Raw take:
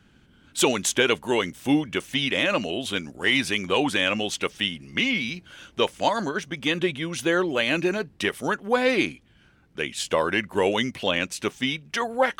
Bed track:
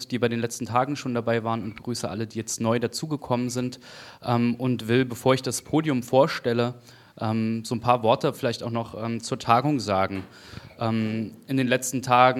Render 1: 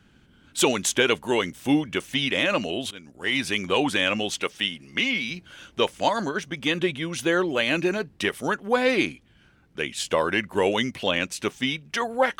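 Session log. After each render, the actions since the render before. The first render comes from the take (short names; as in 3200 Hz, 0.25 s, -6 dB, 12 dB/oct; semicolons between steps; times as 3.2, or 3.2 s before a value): 2.91–3.57 fade in, from -19 dB; 4.41–5.31 low shelf 170 Hz -9.5 dB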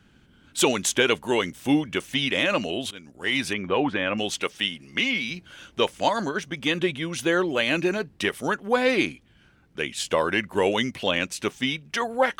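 3.53–4.18 LPF 2000 Hz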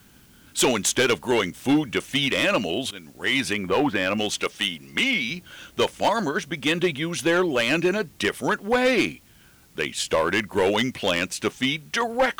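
in parallel at -9.5 dB: requantised 8-bit, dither triangular; on the sum: hard clip -14.5 dBFS, distortion -14 dB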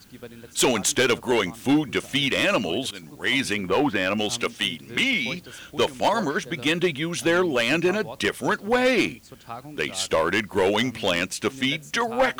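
add bed track -17.5 dB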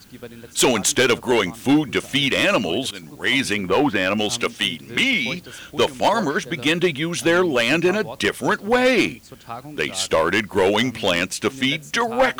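gain +3.5 dB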